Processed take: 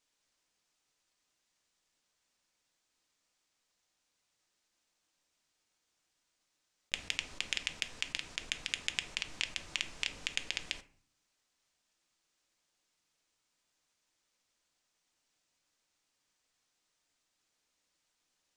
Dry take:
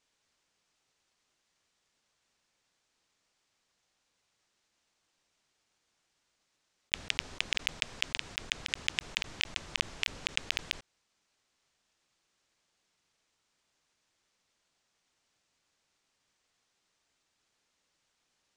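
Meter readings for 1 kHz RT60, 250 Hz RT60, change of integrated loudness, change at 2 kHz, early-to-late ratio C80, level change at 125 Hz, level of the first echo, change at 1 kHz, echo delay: 0.50 s, 0.85 s, -3.5 dB, -4.0 dB, 20.5 dB, -6.0 dB, none, -4.5 dB, none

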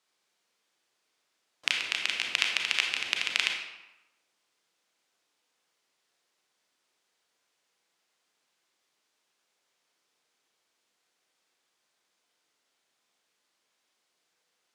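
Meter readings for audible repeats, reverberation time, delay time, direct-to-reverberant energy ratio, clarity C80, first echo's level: none, 0.95 s, none, 1.5 dB, 6.0 dB, none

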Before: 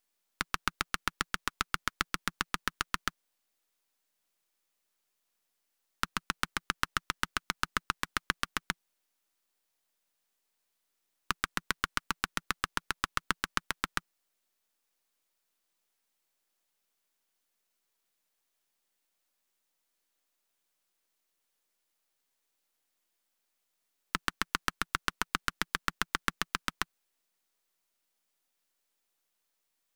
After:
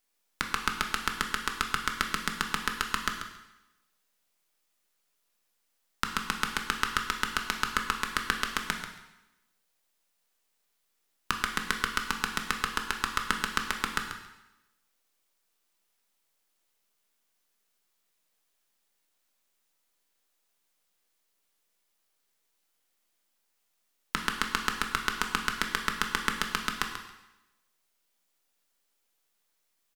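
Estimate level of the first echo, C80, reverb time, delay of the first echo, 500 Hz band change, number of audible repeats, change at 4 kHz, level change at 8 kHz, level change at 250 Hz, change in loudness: -10.0 dB, 6.5 dB, 0.95 s, 0.138 s, +5.0 dB, 1, +4.0 dB, +3.5 dB, +4.5 dB, +3.5 dB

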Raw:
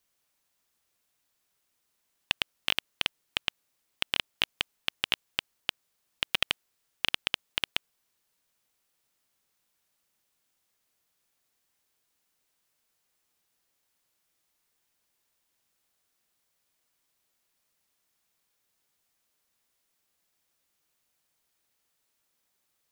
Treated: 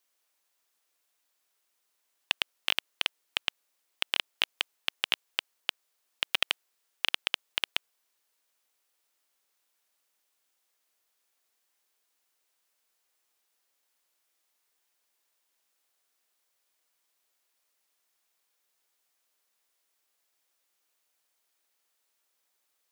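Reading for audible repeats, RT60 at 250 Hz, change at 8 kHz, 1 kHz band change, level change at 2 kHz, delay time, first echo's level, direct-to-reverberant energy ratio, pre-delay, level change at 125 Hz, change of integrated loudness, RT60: none, none, 0.0 dB, 0.0 dB, 0.0 dB, none, none, none, none, under -15 dB, 0.0 dB, none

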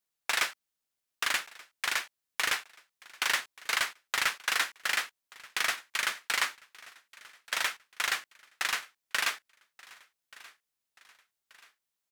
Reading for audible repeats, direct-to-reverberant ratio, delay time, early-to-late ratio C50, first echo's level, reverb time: 2, none, 1.181 s, none, -22.0 dB, none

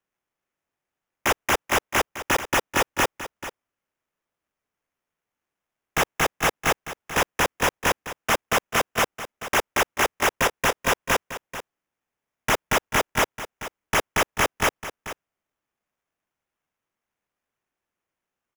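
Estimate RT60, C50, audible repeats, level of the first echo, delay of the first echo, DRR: none, none, 1, -13.0 dB, 0.438 s, none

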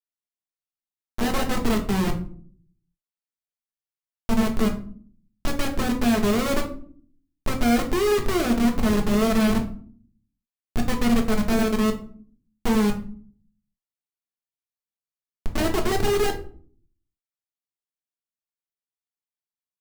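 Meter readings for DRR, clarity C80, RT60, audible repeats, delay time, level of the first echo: 1.5 dB, 15.0 dB, 0.50 s, none, none, none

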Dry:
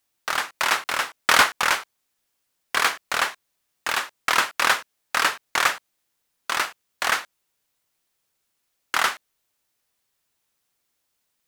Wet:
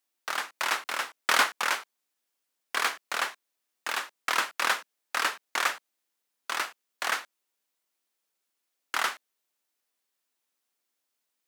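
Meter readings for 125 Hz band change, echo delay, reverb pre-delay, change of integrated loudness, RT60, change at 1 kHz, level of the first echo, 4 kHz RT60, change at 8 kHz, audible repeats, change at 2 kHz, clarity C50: under -15 dB, none, none, -6.5 dB, none, -6.5 dB, none, none, -6.5 dB, none, -6.5 dB, none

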